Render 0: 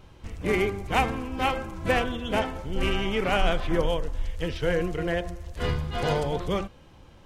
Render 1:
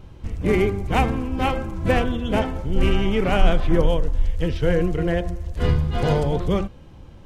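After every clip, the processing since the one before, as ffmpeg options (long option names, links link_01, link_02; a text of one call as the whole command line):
ffmpeg -i in.wav -af "lowshelf=frequency=440:gain=9.5" out.wav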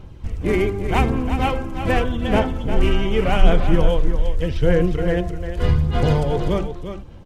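ffmpeg -i in.wav -af "aphaser=in_gain=1:out_gain=1:delay=3.2:decay=0.31:speed=0.84:type=sinusoidal,aecho=1:1:352:0.355" out.wav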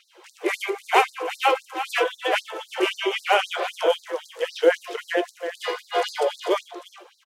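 ffmpeg -i in.wav -filter_complex "[0:a]asplit=2[link_01][link_02];[link_02]adelay=16,volume=-11.5dB[link_03];[link_01][link_03]amix=inputs=2:normalize=0,afftfilt=real='re*gte(b*sr/1024,310*pow(4000/310,0.5+0.5*sin(2*PI*3.8*pts/sr)))':imag='im*gte(b*sr/1024,310*pow(4000/310,0.5+0.5*sin(2*PI*3.8*pts/sr)))':win_size=1024:overlap=0.75,volume=4.5dB" out.wav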